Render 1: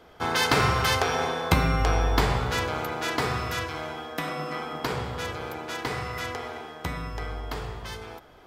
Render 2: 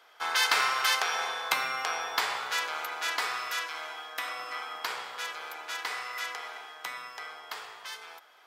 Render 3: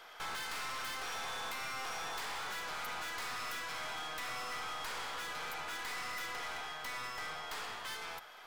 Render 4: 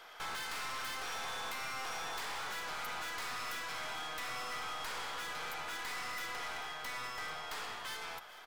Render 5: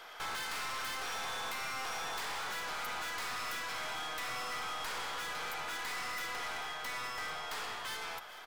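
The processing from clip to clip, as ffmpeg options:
-af "highpass=1100"
-af "acompressor=threshold=0.0178:ratio=5,aeval=exprs='(tanh(200*val(0)+0.5)-tanh(0.5))/200':c=same,volume=2.24"
-af "aecho=1:1:439:0.141"
-af "asoftclip=type=tanh:threshold=0.0158,volume=1.5"

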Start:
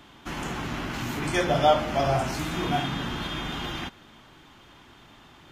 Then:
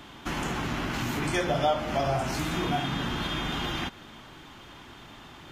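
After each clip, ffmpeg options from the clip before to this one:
-af "acompressor=threshold=0.02:ratio=2,volume=1.68"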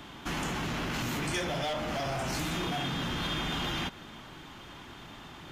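-filter_complex "[0:a]equalizer=f=170:t=o:w=0.35:g=3,acrossover=split=2500[s0][s1];[s0]asoftclip=type=hard:threshold=0.0266[s2];[s2][s1]amix=inputs=2:normalize=0"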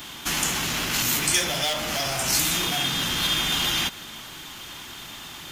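-af "crystalizer=i=7:c=0,volume=1.12"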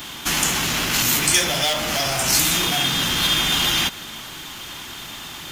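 -af "acrusher=bits=6:mode=log:mix=0:aa=0.000001,volume=1.68"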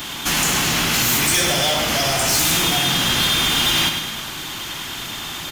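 -af "asoftclip=type=tanh:threshold=0.112,aecho=1:1:101|202|303|404|505|606|707:0.447|0.241|0.13|0.0703|0.038|0.0205|0.0111,volume=1.68"

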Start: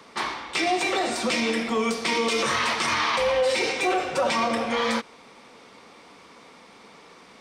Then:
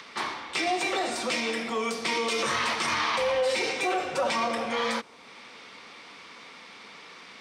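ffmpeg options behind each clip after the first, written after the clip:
-filter_complex "[0:a]highpass=70,acrossover=split=390|1400|5400[s0][s1][s2][s3];[s0]alimiter=level_in=2:limit=0.0631:level=0:latency=1,volume=0.501[s4];[s2]acompressor=mode=upward:threshold=0.0178:ratio=2.5[s5];[s4][s1][s5][s3]amix=inputs=4:normalize=0,volume=0.708"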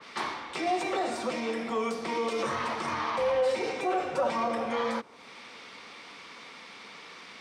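-filter_complex "[0:a]acrossover=split=270|1200[s0][s1][s2];[s2]alimiter=level_in=1.12:limit=0.0631:level=0:latency=1:release=172,volume=0.891[s3];[s0][s1][s3]amix=inputs=3:normalize=0,adynamicequalizer=threshold=0.00562:dfrequency=1800:dqfactor=0.7:tfrequency=1800:tqfactor=0.7:attack=5:release=100:ratio=0.375:range=3.5:mode=cutabove:tftype=highshelf"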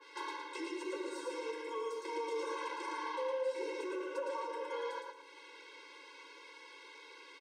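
-af "acompressor=threshold=0.0355:ratio=4,aecho=1:1:112|224|336|448:0.631|0.202|0.0646|0.0207,afftfilt=real='re*eq(mod(floor(b*sr/1024/280),2),1)':imag='im*eq(mod(floor(b*sr/1024/280),2),1)':win_size=1024:overlap=0.75,volume=0.501"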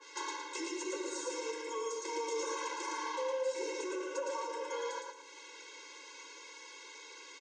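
-af "lowpass=f=6800:t=q:w=8.5,volume=1.12"

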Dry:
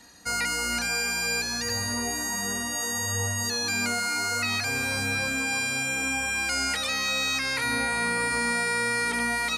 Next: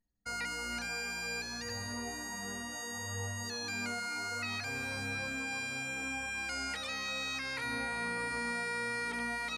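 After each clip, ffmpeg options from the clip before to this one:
-af "anlmdn=2.51,highshelf=f=7100:g=-10.5,volume=0.355"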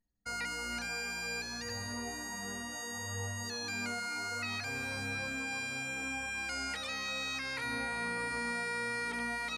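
-af anull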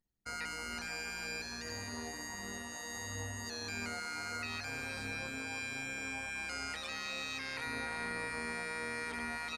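-af "tremolo=f=160:d=0.71,aecho=1:1:468:0.211"

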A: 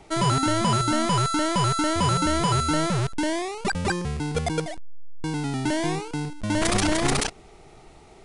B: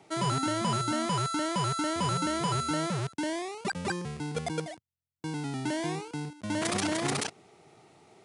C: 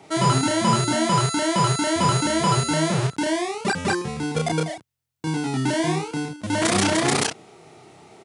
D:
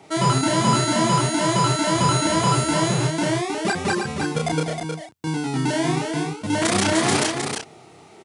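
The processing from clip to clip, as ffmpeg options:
-af "highpass=f=110:w=0.5412,highpass=f=110:w=1.3066,volume=0.473"
-filter_complex "[0:a]asplit=2[s0][s1];[s1]adelay=31,volume=0.794[s2];[s0][s2]amix=inputs=2:normalize=0,volume=2.37"
-af "aecho=1:1:314:0.531"

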